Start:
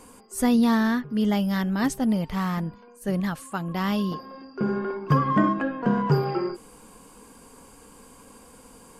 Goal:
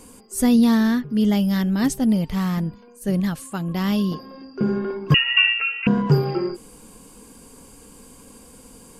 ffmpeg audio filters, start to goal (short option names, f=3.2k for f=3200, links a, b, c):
-filter_complex "[0:a]equalizer=f=1.1k:t=o:w=2.2:g=-8,asettb=1/sr,asplit=3[a][b][c];[a]atrim=end=5.144[d];[b]atrim=start=5.14:end=5.87,asetpts=PTS-STARTPTS,afade=t=in:d=0.004:c=qsin,afade=t=out:st=0.726:d=0.004:c=qsin,lowpass=f=2.6k:t=q:w=0.5098,lowpass=f=2.6k:t=q:w=0.6013,lowpass=f=2.6k:t=q:w=0.9,lowpass=f=2.6k:t=q:w=2.563,afreqshift=-3000[e];[c]atrim=start=5.866[f];[d][e]acrossfade=d=0.004:c1=hsin:c2=qsin[g];[g][f]acrossfade=d=0.004:c1=qsin:c2=hsin,volume=5.5dB"